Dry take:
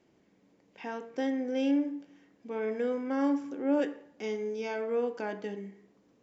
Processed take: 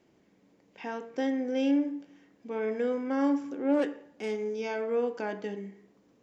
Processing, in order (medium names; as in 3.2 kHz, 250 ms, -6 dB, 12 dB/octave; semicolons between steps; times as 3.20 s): 3.51–4.54 s: self-modulated delay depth 0.1 ms; trim +1.5 dB